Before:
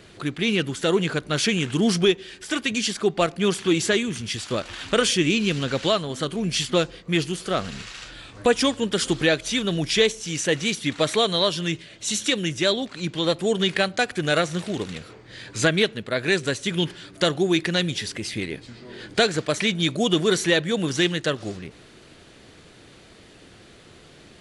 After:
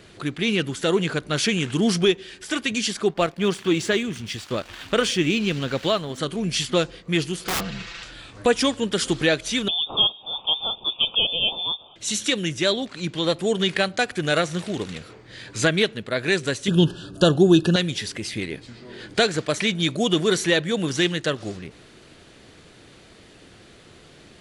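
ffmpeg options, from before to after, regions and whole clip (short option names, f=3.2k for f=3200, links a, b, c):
-filter_complex "[0:a]asettb=1/sr,asplit=3[a][b][c];[a]atrim=end=3.094[d];[b]atrim=start=3.09:end=6.18,asetpts=PTS-STARTPTS,afade=t=in:d=0.004:c=qsin,afade=t=out:st=3.086:d=0.004:c=qsin,highshelf=f=7.6k:g=-9.5,aeval=exprs='sgn(val(0))*max(abs(val(0))-0.00473,0)':c=same[e];[c]atrim=start=6.176[f];[d][e]acrossfade=d=0.004:c1=hsin:c2=qsin[g];[g][f]acrossfade=d=0.004:c1=qsin:c2=hsin,asettb=1/sr,asplit=3[h][i][j];[h]atrim=end=7.444[k];[i]atrim=start=7.44:end=8.03,asetpts=PTS-STARTPTS,afade=t=in:d=0.004:c=qsin,afade=t=out:st=0.586:d=0.004:c=qsin,lowpass=5k,aecho=1:1:5.9:0.84,atrim=end_sample=26019,aeval=exprs='(mod(8.91*val(0)+1,2)-1)/8.91':c=same[l];[j]atrim=start=8.026[m];[k][l]acrossfade=d=0.004:c1=hsin:c2=qsin[n];[n][m]acrossfade=d=0.004:c1=qsin:c2=hsin,asettb=1/sr,asplit=3[o][p][q];[o]atrim=end=9.684[r];[p]atrim=start=9.68:end=11.96,asetpts=PTS-STARTPTS,afade=t=in:d=0.004:c=qsin,afade=t=out:st=2.276:d=0.004:c=qsin,asuperstop=centerf=1800:order=8:qfactor=1.2,lowpass=f=3.1k:t=q:w=0.5098,lowpass=f=3.1k:t=q:w=0.6013,lowpass=f=3.1k:t=q:w=0.9,lowpass=f=3.1k:t=q:w=2.563,afreqshift=-3700[s];[q]atrim=start=11.956[t];[r][s]acrossfade=d=0.004:c1=hsin:c2=qsin[u];[u][t]acrossfade=d=0.004:c1=qsin:c2=hsin,asettb=1/sr,asplit=3[v][w][x];[v]atrim=end=16.684[y];[w]atrim=start=16.68:end=17.76,asetpts=PTS-STARTPTS,afade=t=in:d=0.004:c=qsin,afade=t=out:st=1.076:d=0.004:c=qsin,asuperstop=centerf=2100:order=20:qfactor=2.6,lowshelf=f=440:g=10[z];[x]atrim=start=17.756[aa];[y][z]acrossfade=d=0.004:c1=hsin:c2=qsin[ab];[ab][aa]acrossfade=d=0.004:c1=qsin:c2=hsin"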